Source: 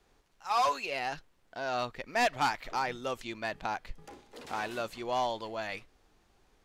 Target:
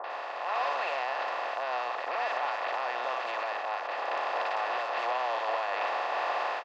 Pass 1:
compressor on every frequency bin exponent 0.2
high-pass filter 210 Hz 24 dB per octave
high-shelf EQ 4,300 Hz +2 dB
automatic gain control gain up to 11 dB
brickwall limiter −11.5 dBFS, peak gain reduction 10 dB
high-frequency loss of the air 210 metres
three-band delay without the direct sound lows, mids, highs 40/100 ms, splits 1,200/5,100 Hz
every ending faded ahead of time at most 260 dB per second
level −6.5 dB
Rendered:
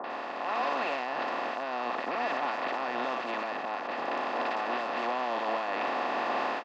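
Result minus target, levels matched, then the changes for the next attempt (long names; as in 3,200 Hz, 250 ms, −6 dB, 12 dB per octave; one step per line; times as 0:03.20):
250 Hz band +15.0 dB
change: high-pass filter 480 Hz 24 dB per octave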